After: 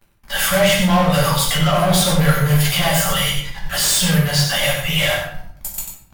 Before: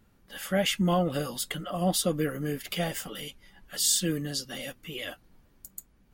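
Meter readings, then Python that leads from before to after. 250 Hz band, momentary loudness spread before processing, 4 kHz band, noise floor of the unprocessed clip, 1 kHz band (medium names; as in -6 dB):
+11.0 dB, 17 LU, +14.5 dB, -63 dBFS, +15.0 dB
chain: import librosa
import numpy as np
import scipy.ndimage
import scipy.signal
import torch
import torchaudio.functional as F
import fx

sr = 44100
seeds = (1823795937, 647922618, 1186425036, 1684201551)

p1 = fx.dereverb_blind(x, sr, rt60_s=0.59)
p2 = scipy.signal.sosfilt(scipy.signal.cheby1(2, 1.0, [140.0, 710.0], 'bandstop', fs=sr, output='sos'), p1)
p3 = fx.over_compress(p2, sr, threshold_db=-38.0, ratio=-1.0)
p4 = p2 + F.gain(torch.from_numpy(p3), 1.0).numpy()
p5 = fx.leveller(p4, sr, passes=5)
p6 = p5 + fx.echo_single(p5, sr, ms=93, db=-6.5, dry=0)
p7 = fx.room_shoebox(p6, sr, seeds[0], volume_m3=110.0, walls='mixed', distance_m=1.2)
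y = F.gain(torch.from_numpy(p7), -6.0).numpy()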